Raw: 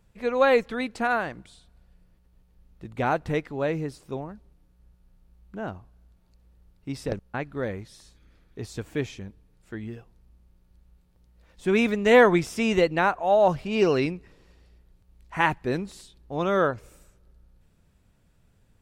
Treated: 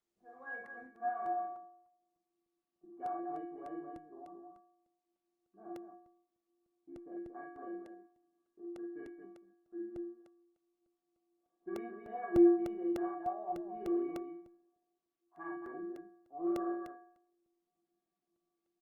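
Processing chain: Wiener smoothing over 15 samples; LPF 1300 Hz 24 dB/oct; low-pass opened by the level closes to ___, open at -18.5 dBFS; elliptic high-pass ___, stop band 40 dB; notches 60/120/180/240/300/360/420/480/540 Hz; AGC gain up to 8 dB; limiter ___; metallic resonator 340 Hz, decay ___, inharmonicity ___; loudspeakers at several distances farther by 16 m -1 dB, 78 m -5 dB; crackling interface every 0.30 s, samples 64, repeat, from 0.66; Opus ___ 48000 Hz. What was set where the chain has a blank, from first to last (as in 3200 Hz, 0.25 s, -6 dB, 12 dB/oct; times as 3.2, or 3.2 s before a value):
1000 Hz, 170 Hz, -10.5 dBFS, 0.84 s, 0.03, 32 kbps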